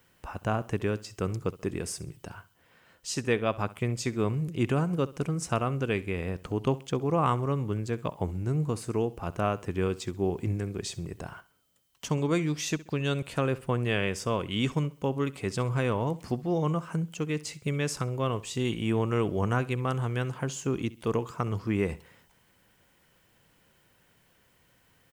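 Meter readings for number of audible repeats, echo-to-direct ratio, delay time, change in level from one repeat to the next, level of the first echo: 2, -18.5 dB, 66 ms, -9.5 dB, -19.0 dB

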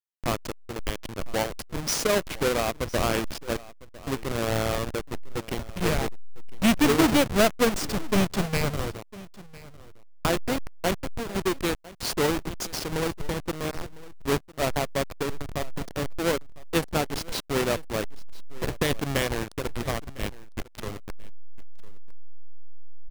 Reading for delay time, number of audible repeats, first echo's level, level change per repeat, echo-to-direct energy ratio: 1004 ms, 1, -20.0 dB, no regular repeats, -20.0 dB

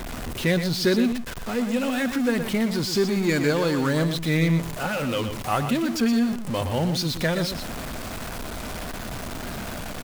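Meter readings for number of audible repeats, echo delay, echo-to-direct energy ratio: 1, 120 ms, -9.0 dB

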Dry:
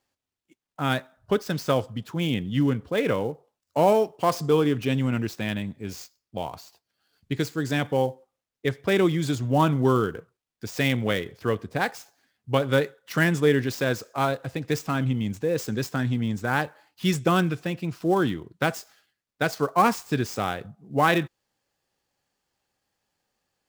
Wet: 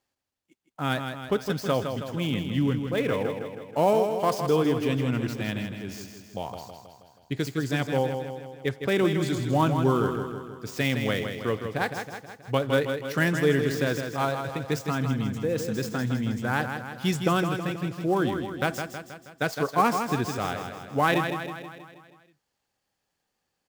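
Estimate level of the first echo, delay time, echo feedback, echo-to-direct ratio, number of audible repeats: -7.0 dB, 160 ms, 56%, -5.5 dB, 6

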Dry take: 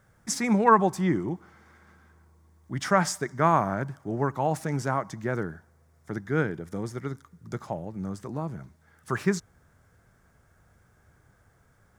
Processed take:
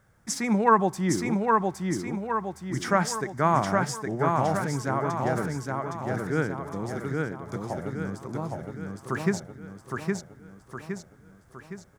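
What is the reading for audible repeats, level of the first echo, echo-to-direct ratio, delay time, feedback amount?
6, -3.0 dB, -1.5 dB, 814 ms, 50%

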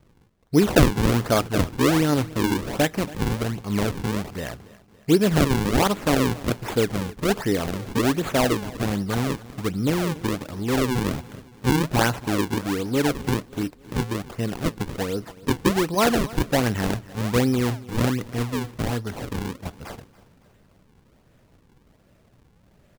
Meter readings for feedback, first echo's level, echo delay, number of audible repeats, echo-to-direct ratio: 49%, -20.0 dB, 281 ms, 3, -19.0 dB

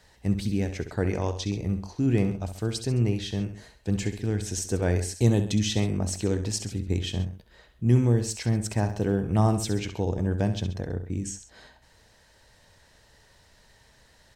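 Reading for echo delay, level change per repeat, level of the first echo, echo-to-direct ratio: 66 ms, -5.5 dB, -10.5 dB, -9.5 dB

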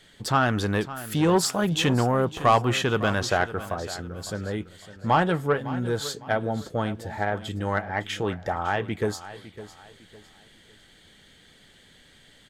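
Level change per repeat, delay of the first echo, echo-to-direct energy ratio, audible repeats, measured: -9.5 dB, 556 ms, -14.5 dB, 3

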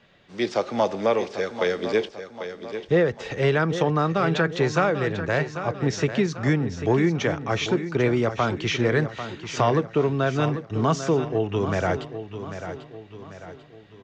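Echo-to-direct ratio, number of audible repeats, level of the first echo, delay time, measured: -9.5 dB, 4, -10.5 dB, 793 ms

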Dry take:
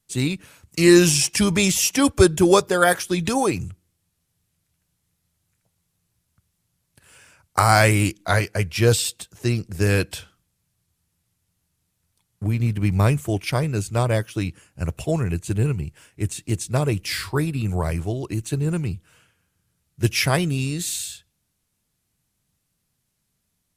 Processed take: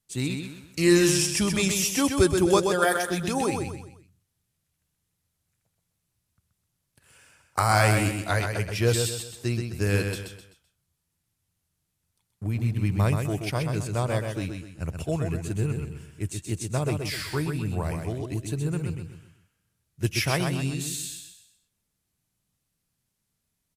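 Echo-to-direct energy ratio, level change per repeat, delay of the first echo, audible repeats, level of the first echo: -5.0 dB, -8.5 dB, 128 ms, 4, -5.5 dB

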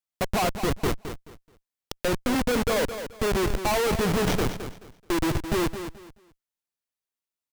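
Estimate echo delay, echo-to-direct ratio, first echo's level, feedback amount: 215 ms, -9.5 dB, -10.0 dB, 24%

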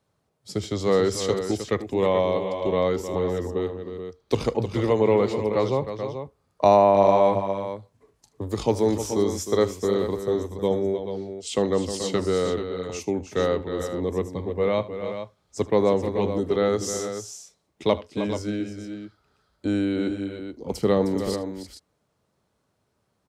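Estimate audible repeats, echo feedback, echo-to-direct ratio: 3, no regular repeats, -6.5 dB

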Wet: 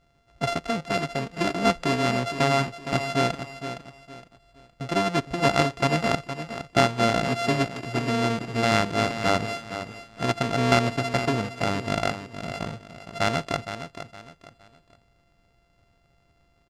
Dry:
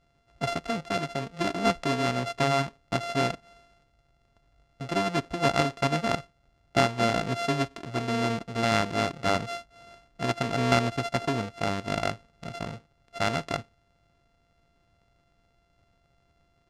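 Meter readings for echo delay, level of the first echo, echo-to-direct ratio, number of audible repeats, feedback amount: 464 ms, -10.5 dB, -10.0 dB, 3, 31%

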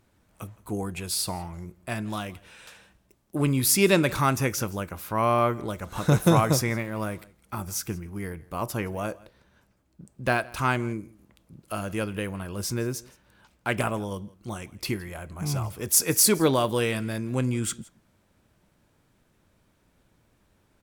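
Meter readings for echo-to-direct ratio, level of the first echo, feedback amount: -23.0 dB, -23.0 dB, no regular repeats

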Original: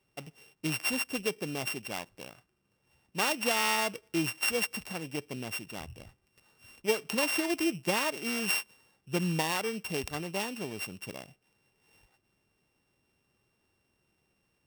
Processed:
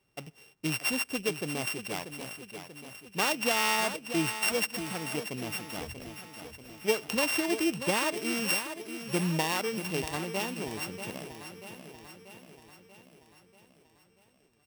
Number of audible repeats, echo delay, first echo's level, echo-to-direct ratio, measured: 6, 637 ms, -10.0 dB, -8.5 dB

